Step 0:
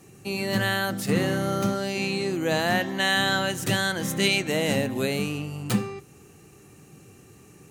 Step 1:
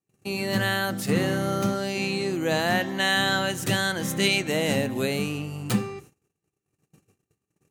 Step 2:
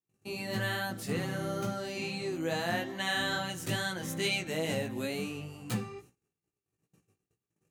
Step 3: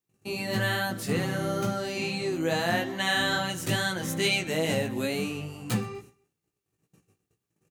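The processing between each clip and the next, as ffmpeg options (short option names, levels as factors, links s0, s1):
-af "agate=range=0.0158:threshold=0.00501:ratio=16:detection=peak"
-af "flanger=delay=16.5:depth=2.3:speed=2.3,volume=0.531"
-af "aecho=1:1:125|250:0.0708|0.0255,volume=1.88"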